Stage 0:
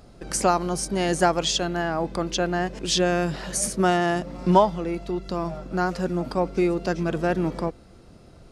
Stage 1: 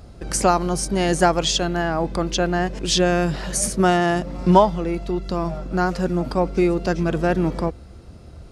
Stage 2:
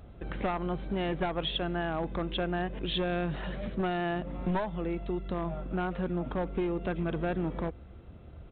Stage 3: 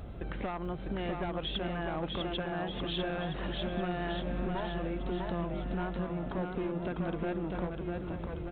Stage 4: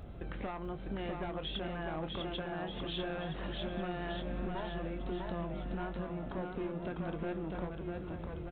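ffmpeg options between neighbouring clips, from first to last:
-af "equalizer=f=69:w=1.3:g=11.5,volume=3dB"
-af "aresample=8000,aeval=exprs='clip(val(0),-1,0.168)':c=same,aresample=44100,acompressor=threshold=-21dB:ratio=4,volume=-7dB"
-af "acompressor=threshold=-44dB:ratio=3,aecho=1:1:650|1235|1762|2235|2662:0.631|0.398|0.251|0.158|0.1,volume=6.5dB"
-filter_complex "[0:a]asplit=2[a][b];[b]adelay=25,volume=-12dB[c];[a][c]amix=inputs=2:normalize=0,volume=-4dB"

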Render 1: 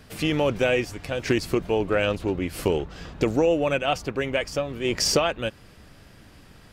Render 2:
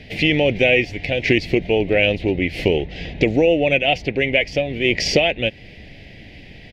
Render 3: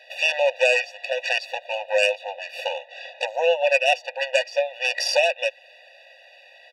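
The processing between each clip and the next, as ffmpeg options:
-filter_complex "[0:a]firequalizer=gain_entry='entry(720,0);entry(1200,-26);entry(2000,9);entry(8300,-20)':delay=0.05:min_phase=1,asplit=2[a][b];[b]acompressor=threshold=-30dB:ratio=6,volume=-2dB[c];[a][c]amix=inputs=2:normalize=0,volume=3.5dB"
-af "aeval=exprs='0.891*(cos(1*acos(clip(val(0)/0.891,-1,1)))-cos(1*PI/2))+0.1*(cos(3*acos(clip(val(0)/0.891,-1,1)))-cos(3*PI/2))+0.112*(cos(4*acos(clip(val(0)/0.891,-1,1)))-cos(4*PI/2))+0.00562*(cos(8*acos(clip(val(0)/0.891,-1,1)))-cos(8*PI/2))':c=same,afftfilt=real='re*eq(mod(floor(b*sr/1024/490),2),1)':imag='im*eq(mod(floor(b*sr/1024/490),2),1)':win_size=1024:overlap=0.75,volume=2.5dB"

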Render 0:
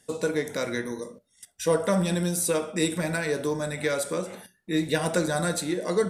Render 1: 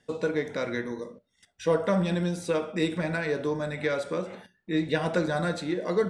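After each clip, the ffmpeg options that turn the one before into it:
-af "lowpass=3.7k,volume=-1dB"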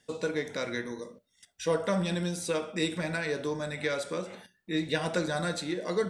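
-af "highshelf=f=3.2k:g=11,volume=-4dB"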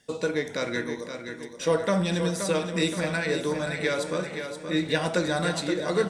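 -af "aecho=1:1:524|1048|1572|2096|2620:0.398|0.187|0.0879|0.0413|0.0194,volume=4dB"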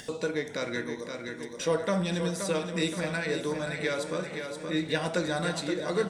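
-af "acompressor=mode=upward:threshold=-27dB:ratio=2.5,volume=-3.5dB"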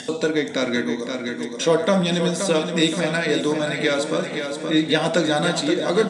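-af "highpass=130,equalizer=f=260:t=q:w=4:g=9,equalizer=f=680:t=q:w=4:g=4,equalizer=f=3.5k:t=q:w=4:g=5,equalizer=f=7.4k:t=q:w=4:g=3,lowpass=f=9.8k:w=0.5412,lowpass=f=9.8k:w=1.3066,volume=8dB"

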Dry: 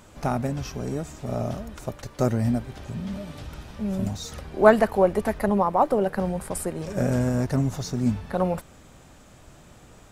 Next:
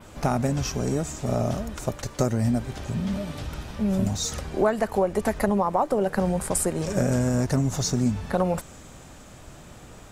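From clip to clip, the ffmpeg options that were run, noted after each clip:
-af "adynamicequalizer=threshold=0.00224:dfrequency=7100:dqfactor=1.4:tfrequency=7100:tqfactor=1.4:attack=5:release=100:ratio=0.375:range=3.5:mode=boostabove:tftype=bell,acompressor=threshold=-23dB:ratio=8,volume=4.5dB"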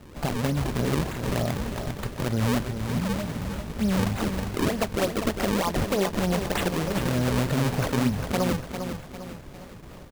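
-af "alimiter=limit=-15dB:level=0:latency=1:release=127,acrusher=samples=37:mix=1:aa=0.000001:lfo=1:lforange=59.2:lforate=3.3,aecho=1:1:401|802|1203|1604|2005:0.398|0.179|0.0806|0.0363|0.0163"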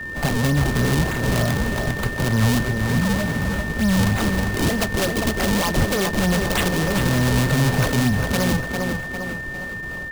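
-filter_complex "[0:a]acrossover=split=160|2300[a][b][c];[b]volume=29dB,asoftclip=hard,volume=-29dB[d];[a][d][c]amix=inputs=3:normalize=0,aeval=exprs='val(0)+0.0141*sin(2*PI*1800*n/s)':c=same,volume=8dB"

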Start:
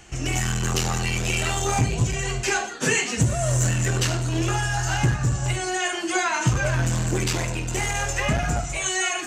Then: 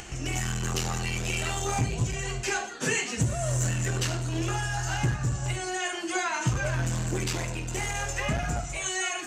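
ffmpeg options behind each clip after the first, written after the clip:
-af "acompressor=mode=upward:threshold=-27dB:ratio=2.5,volume=-5.5dB"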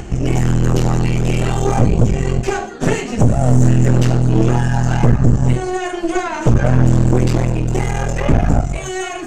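-af "tiltshelf=f=890:g=9.5,aeval=exprs='0.473*(cos(1*acos(clip(val(0)/0.473,-1,1)))-cos(1*PI/2))+0.0944*(cos(5*acos(clip(val(0)/0.473,-1,1)))-cos(5*PI/2))+0.168*(cos(6*acos(clip(val(0)/0.473,-1,1)))-cos(6*PI/2))':c=same,volume=2dB"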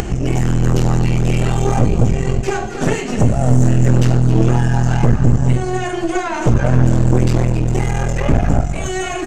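-af "aecho=1:1:267|534|801:0.224|0.0649|0.0188,acompressor=mode=upward:threshold=-13dB:ratio=2.5,volume=-1dB"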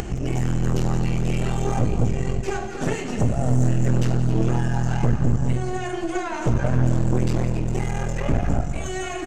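-filter_complex "[0:a]asplit=2[a][b];[b]adelay=174.9,volume=-12dB,highshelf=f=4k:g=-3.94[c];[a][c]amix=inputs=2:normalize=0,volume=-7.5dB"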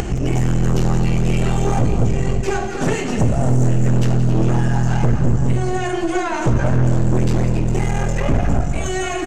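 -af "asoftclip=type=tanh:threshold=-13.5dB,volume=7dB"

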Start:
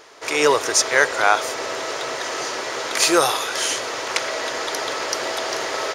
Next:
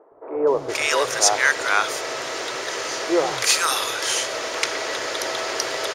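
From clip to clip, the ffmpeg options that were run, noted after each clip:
-filter_complex "[0:a]acrossover=split=220|910[a][b][c];[a]adelay=120[d];[c]adelay=470[e];[d][b][e]amix=inputs=3:normalize=0"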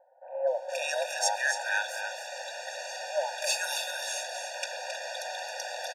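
-af "afreqshift=96,aecho=1:1:269|303:0.398|0.119,afftfilt=real='re*eq(mod(floor(b*sr/1024/480),2),1)':imag='im*eq(mod(floor(b*sr/1024/480),2),1)':win_size=1024:overlap=0.75,volume=-8.5dB"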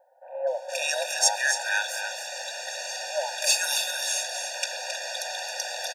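-af "highshelf=f=2.4k:g=9"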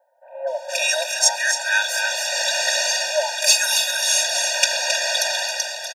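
-af "highpass=f=670:p=1,aecho=1:1:3.2:0.8,dynaudnorm=f=170:g=7:m=16.5dB,volume=-1dB"

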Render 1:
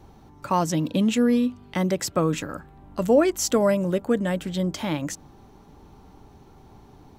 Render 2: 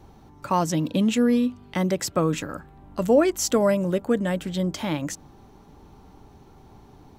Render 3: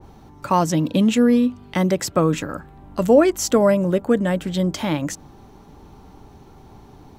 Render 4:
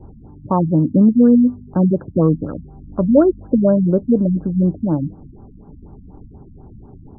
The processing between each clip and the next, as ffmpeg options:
-af anull
-af "adynamicequalizer=threshold=0.0126:dfrequency=2100:dqfactor=0.7:tfrequency=2100:tqfactor=0.7:attack=5:release=100:ratio=0.375:range=2.5:mode=cutabove:tftype=highshelf,volume=4.5dB"
-af "tiltshelf=f=800:g=7.5,afftfilt=real='re*lt(b*sr/1024,270*pow(1700/270,0.5+0.5*sin(2*PI*4.1*pts/sr)))':imag='im*lt(b*sr/1024,270*pow(1700/270,0.5+0.5*sin(2*PI*4.1*pts/sr)))':win_size=1024:overlap=0.75,volume=-1dB"

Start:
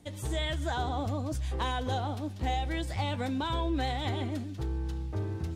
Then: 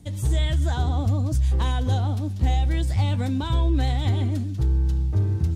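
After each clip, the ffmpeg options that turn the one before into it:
-af "bass=f=250:g=13,treble=f=4k:g=6"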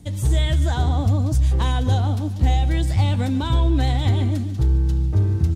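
-af "aecho=1:1:146|292|438|584|730:0.15|0.0793|0.042|0.0223|0.0118,volume=3.5dB"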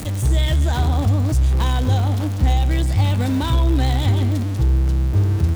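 -af "aeval=exprs='val(0)+0.5*0.0562*sgn(val(0))':c=same"

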